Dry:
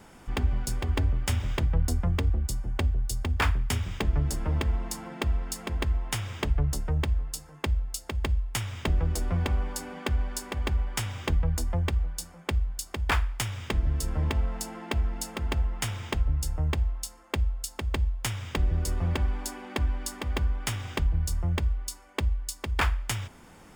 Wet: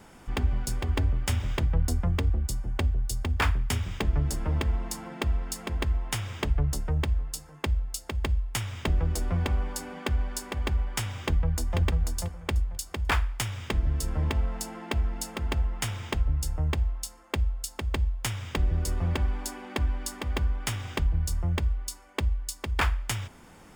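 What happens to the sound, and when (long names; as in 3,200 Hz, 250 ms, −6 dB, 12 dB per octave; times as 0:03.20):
0:11.23–0:11.79: delay throw 490 ms, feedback 20%, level −4.5 dB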